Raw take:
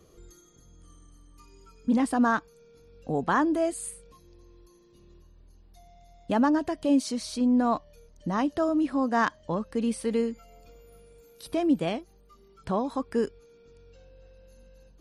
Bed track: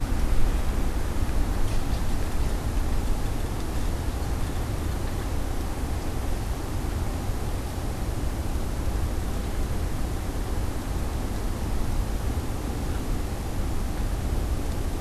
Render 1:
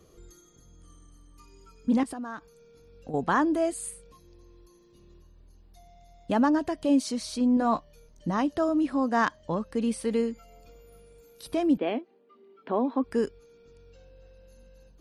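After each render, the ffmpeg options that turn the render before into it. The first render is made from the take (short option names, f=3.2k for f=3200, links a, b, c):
-filter_complex "[0:a]asettb=1/sr,asplit=3[a][b][c];[a]atrim=end=2.034[d];[b]atrim=start=2.03:end=3.14,asetpts=PTS-STARTPTS,afade=t=in:d=0.004:c=qsin,afade=t=out:st=1.106:d=0.004:c=qsin,acompressor=threshold=-33dB:ratio=8:attack=3.2:release=140:knee=1:detection=peak[e];[c]atrim=start=3.136[f];[d][e]acrossfade=d=0.004:c1=hsin:c2=qsin[g];[g][f]acrossfade=d=0.004:c1=qsin:c2=hsin,asettb=1/sr,asplit=3[h][i][j];[h]atrim=end=7.554[k];[i]atrim=start=7.55:end=8.31,asetpts=PTS-STARTPTS,afade=t=in:d=0.004:c=qsin,afade=t=out:st=0.756:d=0.004:c=qsin,asplit=2[l][m];[m]adelay=18,volume=-8.5dB[n];[l][n]amix=inputs=2:normalize=0,atrim=end_sample=33516[o];[j]atrim=start=8.306[p];[k][o]acrossfade=d=0.004:c1=hsin:c2=qsin[q];[q][p]acrossfade=d=0.004:c1=qsin:c2=hsin,asettb=1/sr,asplit=3[r][s][t];[r]atrim=end=11.774[u];[s]atrim=start=11.77:end=13.04,asetpts=PTS-STARTPTS,afade=t=in:d=0.004:c=qsin,afade=t=out:st=1.266:d=0.004:c=qsin,highpass=f=250:w=0.5412,highpass=f=250:w=1.3066,equalizer=f=250:t=q:w=4:g=9,equalizer=f=420:t=q:w=4:g=4,equalizer=f=1.3k:t=q:w=4:g=-3,lowpass=f=3.1k:w=0.5412,lowpass=f=3.1k:w=1.3066[v];[t]atrim=start=13.036[w];[u][v]acrossfade=d=0.004:c1=hsin:c2=qsin[x];[x][w]acrossfade=d=0.004:c1=qsin:c2=hsin"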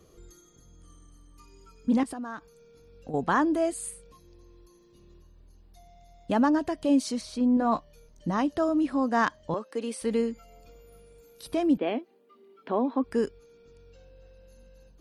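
-filter_complex "[0:a]asettb=1/sr,asplit=3[a][b][c];[a]atrim=end=7.214[d];[b]atrim=start=7.21:end=7.72,asetpts=PTS-STARTPTS,afade=t=in:d=0.004:c=qsin,afade=t=out:st=0.506:d=0.004:c=qsin,highshelf=f=3.6k:g=-8.5[e];[c]atrim=start=7.716[f];[d][e]acrossfade=d=0.004:c1=hsin:c2=qsin[g];[g][f]acrossfade=d=0.004:c1=qsin:c2=hsin,asettb=1/sr,asplit=3[h][i][j];[h]atrim=end=9.544[k];[i]atrim=start=9.54:end=10.02,asetpts=PTS-STARTPTS,afade=t=in:d=0.004:c=qsin,afade=t=out:st=0.476:d=0.004:c=qsin,highpass=f=290:w=0.5412,highpass=f=290:w=1.3066[l];[j]atrim=start=10.016[m];[k][l]acrossfade=d=0.004:c1=hsin:c2=qsin[n];[n][m]acrossfade=d=0.004:c1=qsin:c2=hsin,asettb=1/sr,asplit=3[o][p][q];[o]atrim=end=11.984[r];[p]atrim=start=11.98:end=12.75,asetpts=PTS-STARTPTS,afade=t=in:d=0.004:c=qsin,afade=t=out:st=0.766:d=0.004:c=qsin,aemphasis=mode=production:type=cd[s];[q]atrim=start=12.746[t];[r][s]acrossfade=d=0.004:c1=hsin:c2=qsin[u];[u][t]acrossfade=d=0.004:c1=qsin:c2=hsin"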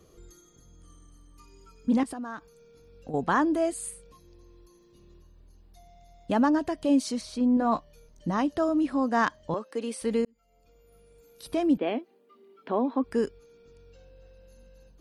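-filter_complex "[0:a]asplit=2[a][b];[a]atrim=end=10.25,asetpts=PTS-STARTPTS,afade=t=out:st=10.246:d=0.004:c=hsin[c];[b]atrim=start=10.25,asetpts=PTS-STARTPTS,afade=t=in:d=1.27[d];[c][d]concat=n=2:v=0:a=1"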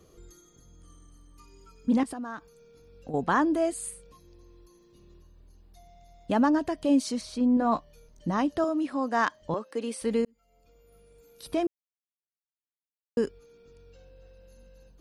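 -filter_complex "[0:a]asettb=1/sr,asplit=3[a][b][c];[a]atrim=end=8.644[d];[b]atrim=start=8.64:end=9.42,asetpts=PTS-STARTPTS,afade=t=in:d=0.004:c=qsin,afade=t=out:st=0.776:d=0.004:c=qsin,highpass=f=340:p=1[e];[c]atrim=start=9.416[f];[d][e]acrossfade=d=0.004:c1=hsin:c2=qsin[g];[g][f]acrossfade=d=0.004:c1=qsin:c2=hsin,asplit=3[h][i][j];[h]atrim=end=11.67,asetpts=PTS-STARTPTS,afade=t=out:st=11.666:d=0.004:c=hsin[k];[i]atrim=start=11.67:end=13.17,asetpts=PTS-STARTPTS,volume=0[l];[j]atrim=start=13.17,asetpts=PTS-STARTPTS,afade=t=in:d=0.004:c=hsin[m];[k][l][m]concat=n=3:v=0:a=1"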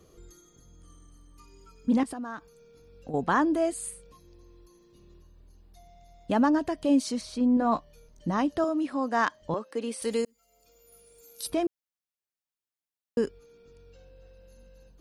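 -filter_complex "[0:a]asettb=1/sr,asplit=3[a][b][c];[a]atrim=end=10.024[d];[b]atrim=start=10.02:end=11.5,asetpts=PTS-STARTPTS,afade=t=in:d=0.004:c=qsin,afade=t=out:st=1.476:d=0.004:c=qsin,bass=f=250:g=-8,treble=f=4k:g=13[e];[c]atrim=start=11.496[f];[d][e]acrossfade=d=0.004:c1=hsin:c2=qsin[g];[g][f]acrossfade=d=0.004:c1=qsin:c2=hsin"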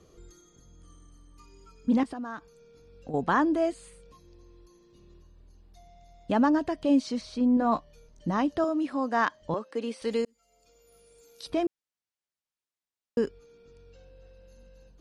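-filter_complex "[0:a]acrossover=split=5600[a][b];[b]acompressor=threshold=-55dB:ratio=4:attack=1:release=60[c];[a][c]amix=inputs=2:normalize=0,lowpass=8.7k"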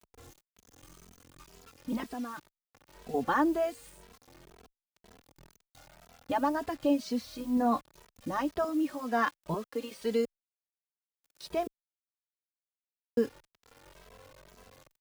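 -filter_complex "[0:a]acrusher=bits=7:mix=0:aa=0.000001,asplit=2[a][b];[b]adelay=2.7,afreqshift=2[c];[a][c]amix=inputs=2:normalize=1"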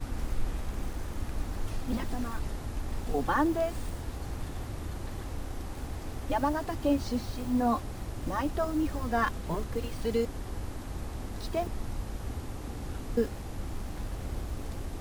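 -filter_complex "[1:a]volume=-9dB[a];[0:a][a]amix=inputs=2:normalize=0"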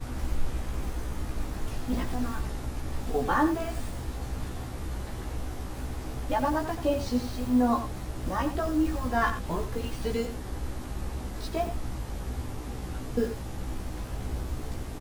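-filter_complex "[0:a]asplit=2[a][b];[b]adelay=16,volume=-2.5dB[c];[a][c]amix=inputs=2:normalize=0,aecho=1:1:88:0.299"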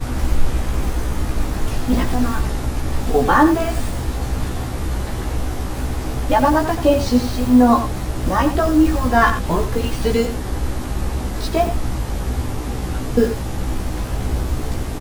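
-af "volume=12dB,alimiter=limit=-3dB:level=0:latency=1"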